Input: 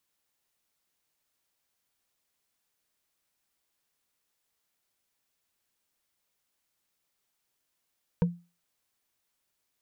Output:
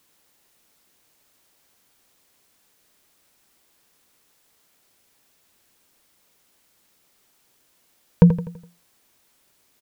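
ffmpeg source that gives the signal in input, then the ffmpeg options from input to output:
-f lavfi -i "aevalsrc='0.133*pow(10,-3*t/0.3)*sin(2*PI*173*t)+0.0596*pow(10,-3*t/0.089)*sin(2*PI*477*t)+0.0266*pow(10,-3*t/0.04)*sin(2*PI*934.9*t)+0.0119*pow(10,-3*t/0.022)*sin(2*PI*1545.4*t)+0.00531*pow(10,-3*t/0.013)*sin(2*PI*2307.8*t)':duration=0.45:sample_rate=44100"
-af "equalizer=frequency=300:width=0.6:gain=4.5,aecho=1:1:83|166|249|332|415:0.237|0.109|0.0502|0.0231|0.0106,alimiter=level_in=15.5dB:limit=-1dB:release=50:level=0:latency=1"

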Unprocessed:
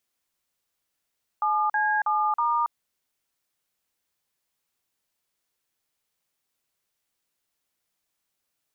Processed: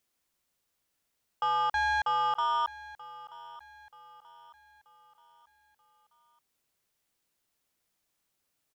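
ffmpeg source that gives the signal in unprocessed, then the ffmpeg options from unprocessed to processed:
-f lavfi -i "aevalsrc='0.0668*clip(min(mod(t,0.321),0.278-mod(t,0.321))/0.002,0,1)*(eq(floor(t/0.321),0)*(sin(2*PI*852*mod(t,0.321))+sin(2*PI*1209*mod(t,0.321)))+eq(floor(t/0.321),1)*(sin(2*PI*852*mod(t,0.321))+sin(2*PI*1633*mod(t,0.321)))+eq(floor(t/0.321),2)*(sin(2*PI*852*mod(t,0.321))+sin(2*PI*1209*mod(t,0.321)))+eq(floor(t/0.321),3)*(sin(2*PI*941*mod(t,0.321))+sin(2*PI*1209*mod(t,0.321))))':duration=1.284:sample_rate=44100"
-af "lowshelf=frequency=500:gain=3.5,asoftclip=type=tanh:threshold=-24dB,aecho=1:1:932|1864|2796|3728:0.126|0.0541|0.0233|0.01"

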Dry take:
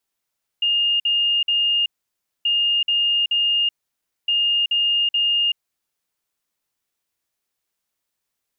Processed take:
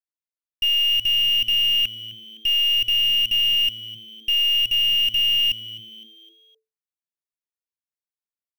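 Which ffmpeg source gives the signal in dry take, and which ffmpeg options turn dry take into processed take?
-f lavfi -i "aevalsrc='0.158*sin(2*PI*2830*t)*clip(min(mod(mod(t,1.83),0.43),0.38-mod(mod(t,1.83),0.43))/0.005,0,1)*lt(mod(t,1.83),1.29)':duration=5.49:sample_rate=44100"
-filter_complex "[0:a]afwtdn=0.0501,aeval=exprs='0.178*(cos(1*acos(clip(val(0)/0.178,-1,1)))-cos(1*PI/2))+0.00282*(cos(3*acos(clip(val(0)/0.178,-1,1)))-cos(3*PI/2))+0.00708*(cos(4*acos(clip(val(0)/0.178,-1,1)))-cos(4*PI/2))+0.0112*(cos(7*acos(clip(val(0)/0.178,-1,1)))-cos(7*PI/2))+0.0126*(cos(8*acos(clip(val(0)/0.178,-1,1)))-cos(8*PI/2))':channel_layout=same,asplit=5[link_01][link_02][link_03][link_04][link_05];[link_02]adelay=257,afreqshift=110,volume=-17dB[link_06];[link_03]adelay=514,afreqshift=220,volume=-23.6dB[link_07];[link_04]adelay=771,afreqshift=330,volume=-30.1dB[link_08];[link_05]adelay=1028,afreqshift=440,volume=-36.7dB[link_09];[link_01][link_06][link_07][link_08][link_09]amix=inputs=5:normalize=0"

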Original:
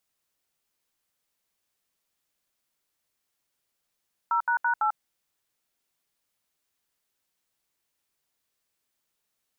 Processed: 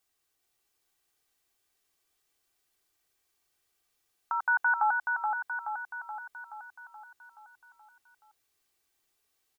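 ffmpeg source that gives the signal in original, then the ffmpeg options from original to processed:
-f lavfi -i "aevalsrc='0.0631*clip(min(mod(t,0.167),0.094-mod(t,0.167))/0.002,0,1)*(eq(floor(t/0.167),0)*(sin(2*PI*941*mod(t,0.167))+sin(2*PI*1336*mod(t,0.167)))+eq(floor(t/0.167),1)*(sin(2*PI*941*mod(t,0.167))+sin(2*PI*1477*mod(t,0.167)))+eq(floor(t/0.167),2)*(sin(2*PI*941*mod(t,0.167))+sin(2*PI*1477*mod(t,0.167)))+eq(floor(t/0.167),3)*(sin(2*PI*852*mod(t,0.167))+sin(2*PI*1336*mod(t,0.167))))':duration=0.668:sample_rate=44100"
-af "aecho=1:1:2.6:0.53,aecho=1:1:426|852|1278|1704|2130|2556|2982|3408:0.596|0.345|0.2|0.116|0.0674|0.0391|0.0227|0.0132"

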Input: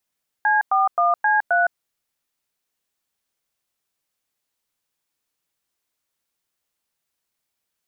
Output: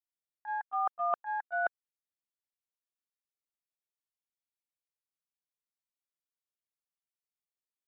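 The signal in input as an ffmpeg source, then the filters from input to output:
-f lavfi -i "aevalsrc='0.133*clip(min(mod(t,0.264),0.162-mod(t,0.264))/0.002,0,1)*(eq(floor(t/0.264),0)*(sin(2*PI*852*mod(t,0.264))+sin(2*PI*1633*mod(t,0.264)))+eq(floor(t/0.264),1)*(sin(2*PI*770*mod(t,0.264))+sin(2*PI*1209*mod(t,0.264)))+eq(floor(t/0.264),2)*(sin(2*PI*697*mod(t,0.264))+sin(2*PI*1209*mod(t,0.264)))+eq(floor(t/0.264),3)*(sin(2*PI*852*mod(t,0.264))+sin(2*PI*1633*mod(t,0.264)))+eq(floor(t/0.264),4)*(sin(2*PI*697*mod(t,0.264))+sin(2*PI*1477*mod(t,0.264))))':duration=1.32:sample_rate=44100"
-af "bandreject=frequency=1600:width=11,agate=range=-23dB:threshold=-18dB:ratio=16:detection=peak,areverse,acompressor=threshold=-30dB:ratio=4,areverse"

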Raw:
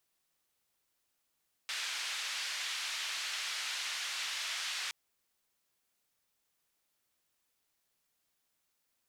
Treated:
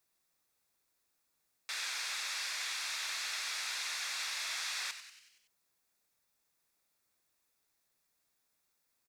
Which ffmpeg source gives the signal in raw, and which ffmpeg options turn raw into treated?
-f lavfi -i "anoisesrc=color=white:duration=3.22:sample_rate=44100:seed=1,highpass=frequency=1600,lowpass=frequency=4400,volume=-24.6dB"
-filter_complex "[0:a]bandreject=frequency=3000:width=5.5,asplit=2[link_01][link_02];[link_02]asplit=6[link_03][link_04][link_05][link_06][link_07][link_08];[link_03]adelay=94,afreqshift=120,volume=-11dB[link_09];[link_04]adelay=188,afreqshift=240,volume=-15.9dB[link_10];[link_05]adelay=282,afreqshift=360,volume=-20.8dB[link_11];[link_06]adelay=376,afreqshift=480,volume=-25.6dB[link_12];[link_07]adelay=470,afreqshift=600,volume=-30.5dB[link_13];[link_08]adelay=564,afreqshift=720,volume=-35.4dB[link_14];[link_09][link_10][link_11][link_12][link_13][link_14]amix=inputs=6:normalize=0[link_15];[link_01][link_15]amix=inputs=2:normalize=0"

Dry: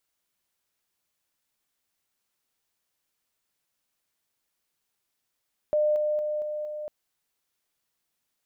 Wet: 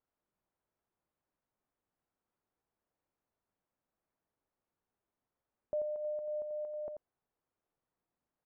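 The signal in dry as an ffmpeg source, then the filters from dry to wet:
-f lavfi -i "aevalsrc='pow(10,(-20-3*floor(t/0.23))/20)*sin(2*PI*603*t)':duration=1.15:sample_rate=44100"
-filter_complex "[0:a]lowpass=1000,alimiter=level_in=6dB:limit=-24dB:level=0:latency=1:release=466,volume=-6dB,asplit=2[link_01][link_02];[link_02]aecho=0:1:87:0.398[link_03];[link_01][link_03]amix=inputs=2:normalize=0"

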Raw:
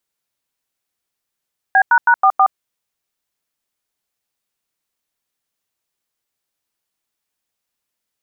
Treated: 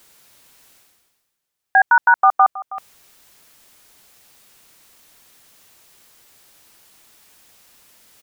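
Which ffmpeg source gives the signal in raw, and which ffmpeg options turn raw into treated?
-f lavfi -i "aevalsrc='0.299*clip(min(mod(t,0.161),0.069-mod(t,0.161))/0.002,0,1)*(eq(floor(t/0.161),0)*(sin(2*PI*770*mod(t,0.161))+sin(2*PI*1633*mod(t,0.161)))+eq(floor(t/0.161),1)*(sin(2*PI*941*mod(t,0.161))+sin(2*PI*1477*mod(t,0.161)))+eq(floor(t/0.161),2)*(sin(2*PI*941*mod(t,0.161))+sin(2*PI*1477*mod(t,0.161)))+eq(floor(t/0.161),3)*(sin(2*PI*770*mod(t,0.161))+sin(2*PI*1209*mod(t,0.161)))+eq(floor(t/0.161),4)*(sin(2*PI*770*mod(t,0.161))+sin(2*PI*1209*mod(t,0.161))))':duration=0.805:sample_rate=44100"
-af "aecho=1:1:320:0.133,areverse,acompressor=mode=upward:threshold=-30dB:ratio=2.5,areverse"

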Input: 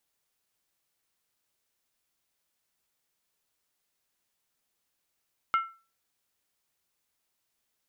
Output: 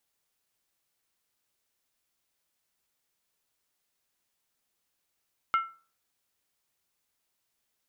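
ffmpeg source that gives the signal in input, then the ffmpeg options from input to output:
-f lavfi -i "aevalsrc='0.112*pow(10,-3*t/0.34)*sin(2*PI*1340*t)+0.0355*pow(10,-3*t/0.269)*sin(2*PI*2136*t)+0.0112*pow(10,-3*t/0.233)*sin(2*PI*2862.2*t)+0.00355*pow(10,-3*t/0.224)*sin(2*PI*3076.6*t)+0.00112*pow(10,-3*t/0.209)*sin(2*PI*3555*t)':duration=0.63:sample_rate=44100"
-af "bandreject=frequency=157.9:width_type=h:width=4,bandreject=frequency=315.8:width_type=h:width=4,bandreject=frequency=473.7:width_type=h:width=4,bandreject=frequency=631.6:width_type=h:width=4,bandreject=frequency=789.5:width_type=h:width=4,bandreject=frequency=947.4:width_type=h:width=4,bandreject=frequency=1105.3:width_type=h:width=4,bandreject=frequency=1263.2:width_type=h:width=4,bandreject=frequency=1421.1:width_type=h:width=4,bandreject=frequency=1579:width_type=h:width=4,bandreject=frequency=1736.9:width_type=h:width=4"

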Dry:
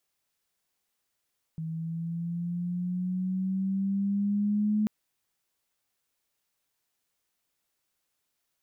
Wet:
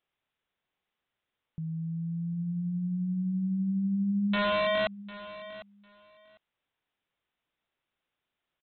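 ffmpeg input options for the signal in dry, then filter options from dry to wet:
-f lavfi -i "aevalsrc='pow(10,(-22.5+9*(t/3.29-1))/20)*sin(2*PI*160*3.29/(5*log(2)/12)*(exp(5*log(2)/12*t/3.29)-1))':duration=3.29:sample_rate=44100"
-af "aresample=8000,aeval=exprs='(mod(15.8*val(0)+1,2)-1)/15.8':channel_layout=same,aresample=44100,aecho=1:1:751|1502:0.158|0.0269"

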